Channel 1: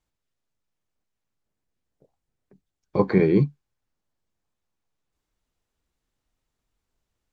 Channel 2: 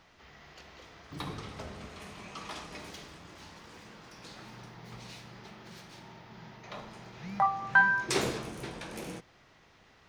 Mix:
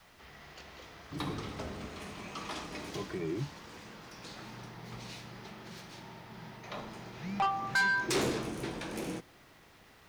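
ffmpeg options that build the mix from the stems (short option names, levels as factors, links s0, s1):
-filter_complex "[0:a]alimiter=limit=0.224:level=0:latency=1,asplit=2[s0][s1];[s1]adelay=2,afreqshift=-0.44[s2];[s0][s2]amix=inputs=2:normalize=1,volume=0.251[s3];[1:a]adynamicequalizer=threshold=0.00224:dfrequency=300:dqfactor=1.8:tfrequency=300:tqfactor=1.8:attack=5:release=100:ratio=0.375:range=2.5:mode=boostabove:tftype=bell,asoftclip=type=tanh:threshold=0.0501,volume=1.19[s4];[s3][s4]amix=inputs=2:normalize=0,acrusher=bits=10:mix=0:aa=0.000001"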